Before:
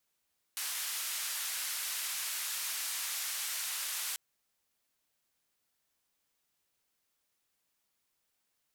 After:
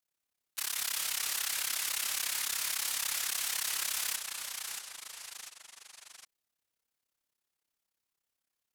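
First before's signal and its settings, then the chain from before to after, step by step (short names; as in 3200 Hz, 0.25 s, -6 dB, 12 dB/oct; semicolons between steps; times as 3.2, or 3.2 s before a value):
noise band 1300–14000 Hz, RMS -37 dBFS 3.59 s
sample leveller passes 2; AM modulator 34 Hz, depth 90%; echoes that change speed 0.122 s, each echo -2 st, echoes 3, each echo -6 dB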